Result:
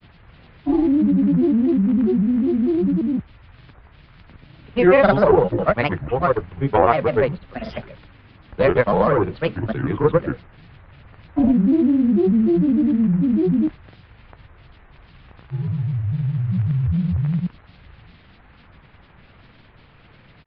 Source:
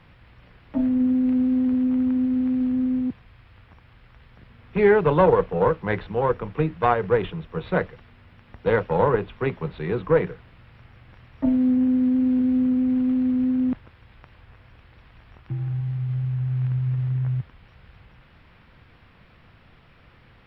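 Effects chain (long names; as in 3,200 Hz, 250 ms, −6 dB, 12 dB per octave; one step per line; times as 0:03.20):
granular cloud, pitch spread up and down by 7 semitones
downsampling to 11,025 Hz
level +5 dB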